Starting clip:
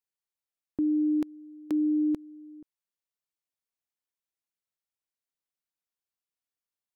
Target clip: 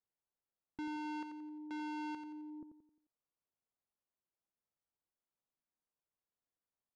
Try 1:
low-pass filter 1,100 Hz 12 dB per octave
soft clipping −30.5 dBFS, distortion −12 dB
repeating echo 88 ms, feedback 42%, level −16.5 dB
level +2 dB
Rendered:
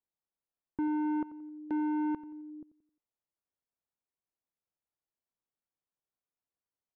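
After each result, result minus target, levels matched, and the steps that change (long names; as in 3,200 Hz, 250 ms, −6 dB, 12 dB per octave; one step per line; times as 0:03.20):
echo-to-direct −8.5 dB; soft clipping: distortion −8 dB
change: repeating echo 88 ms, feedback 42%, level −8 dB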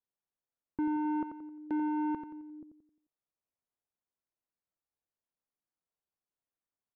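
soft clipping: distortion −8 dB
change: soft clipping −42 dBFS, distortion −4 dB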